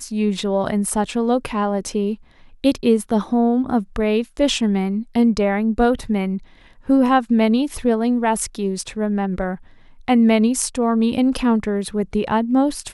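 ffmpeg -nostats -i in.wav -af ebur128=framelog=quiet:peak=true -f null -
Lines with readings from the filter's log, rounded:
Integrated loudness:
  I:         -19.4 LUFS
  Threshold: -29.7 LUFS
Loudness range:
  LRA:         1.6 LU
  Threshold: -39.6 LUFS
  LRA low:   -20.4 LUFS
  LRA high:  -18.8 LUFS
True peak:
  Peak:       -3.7 dBFS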